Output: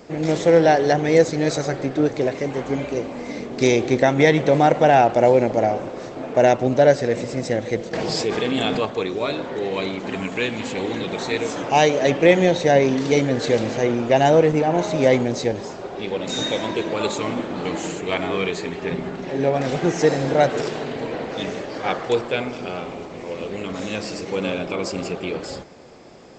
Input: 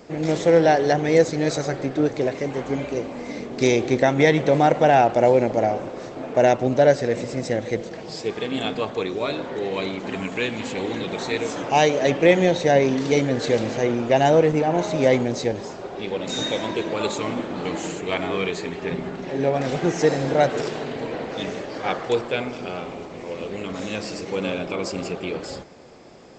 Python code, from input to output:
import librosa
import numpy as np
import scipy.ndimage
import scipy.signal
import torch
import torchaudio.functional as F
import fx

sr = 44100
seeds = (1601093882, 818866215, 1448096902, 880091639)

y = fx.env_flatten(x, sr, amount_pct=70, at=(7.93, 8.86))
y = y * librosa.db_to_amplitude(1.5)